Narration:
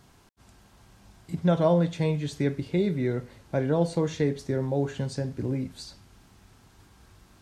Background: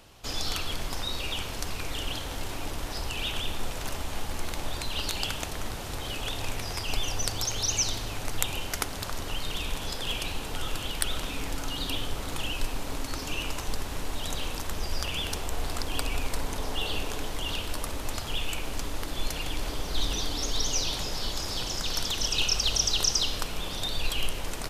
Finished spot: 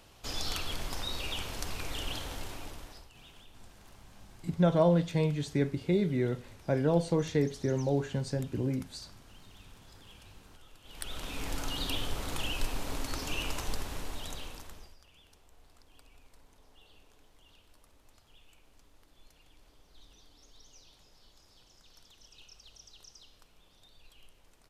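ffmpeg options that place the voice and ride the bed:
-filter_complex "[0:a]adelay=3150,volume=-2.5dB[a];[1:a]volume=18dB,afade=t=out:st=2.22:d=0.87:silence=0.0944061,afade=t=in:st=10.83:d=0.72:silence=0.0794328,afade=t=out:st=13.61:d=1.35:silence=0.0446684[b];[a][b]amix=inputs=2:normalize=0"

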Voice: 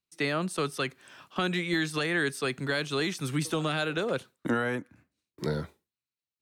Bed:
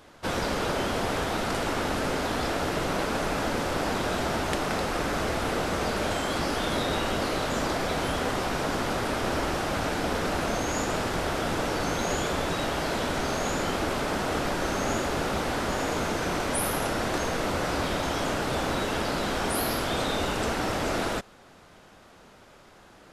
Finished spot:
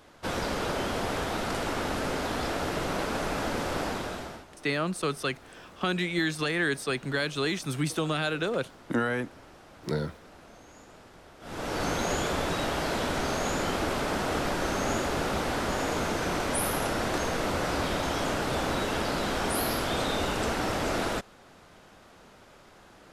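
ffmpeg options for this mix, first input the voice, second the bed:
-filter_complex "[0:a]adelay=4450,volume=0.5dB[a];[1:a]volume=20dB,afade=t=out:st=3.79:d=0.67:silence=0.0891251,afade=t=in:st=11.4:d=0.44:silence=0.0749894[b];[a][b]amix=inputs=2:normalize=0"

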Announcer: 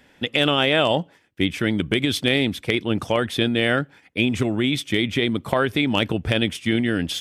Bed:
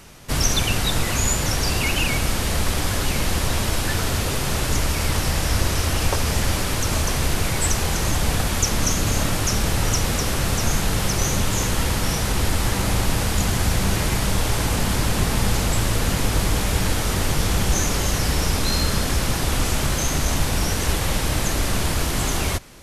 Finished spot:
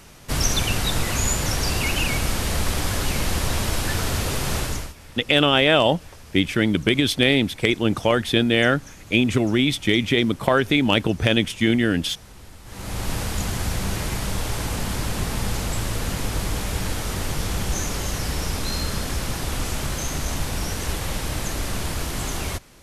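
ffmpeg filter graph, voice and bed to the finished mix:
-filter_complex "[0:a]adelay=4950,volume=2dB[a];[1:a]volume=16.5dB,afade=t=out:st=4.57:d=0.37:silence=0.0841395,afade=t=in:st=12.65:d=0.47:silence=0.125893[b];[a][b]amix=inputs=2:normalize=0"

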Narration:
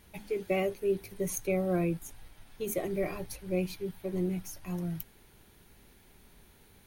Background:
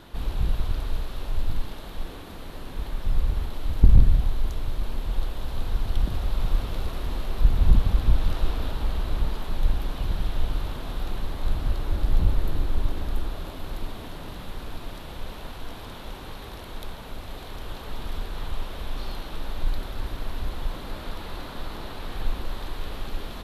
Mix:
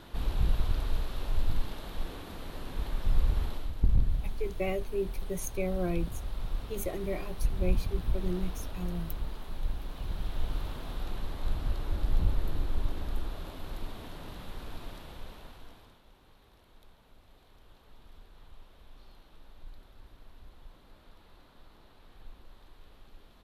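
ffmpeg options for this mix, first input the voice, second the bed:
-filter_complex "[0:a]adelay=4100,volume=-3dB[a];[1:a]volume=2dB,afade=t=out:st=3.5:d=0.22:silence=0.398107,afade=t=in:st=9.85:d=0.73:silence=0.595662,afade=t=out:st=14.83:d=1.18:silence=0.158489[b];[a][b]amix=inputs=2:normalize=0"

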